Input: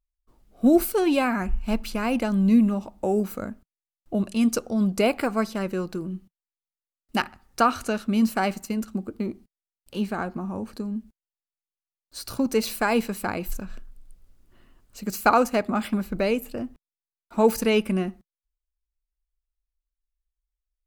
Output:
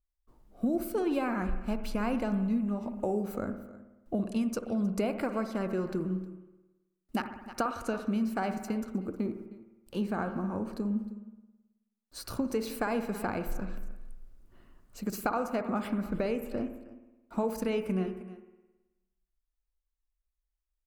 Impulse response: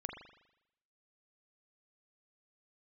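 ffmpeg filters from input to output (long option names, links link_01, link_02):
-filter_complex "[0:a]aecho=1:1:312:0.0891,acompressor=threshold=-26dB:ratio=6,asplit=2[link_01][link_02];[1:a]atrim=start_sample=2205,asetrate=33075,aresample=44100,lowpass=2100[link_03];[link_02][link_03]afir=irnorm=-1:irlink=0,volume=-2dB[link_04];[link_01][link_04]amix=inputs=2:normalize=0,adynamicequalizer=threshold=0.00251:dfrequency=6400:dqfactor=0.7:tfrequency=6400:tqfactor=0.7:attack=5:release=100:ratio=0.375:range=2:mode=cutabove:tftype=highshelf,volume=-5.5dB"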